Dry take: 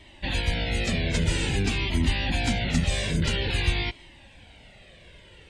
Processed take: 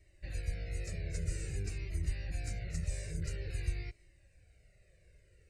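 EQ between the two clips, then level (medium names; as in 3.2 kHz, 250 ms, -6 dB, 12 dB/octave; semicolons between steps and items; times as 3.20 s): peaking EQ 1.1 kHz -13.5 dB 2.3 oct; static phaser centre 900 Hz, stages 6; -8.5 dB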